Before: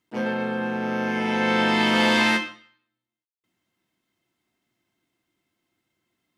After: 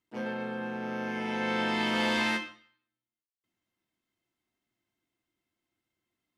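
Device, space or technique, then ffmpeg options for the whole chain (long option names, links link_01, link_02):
low shelf boost with a cut just above: -af "lowshelf=frequency=66:gain=8,equalizer=frequency=160:width_type=o:width=0.54:gain=-4,volume=-8.5dB"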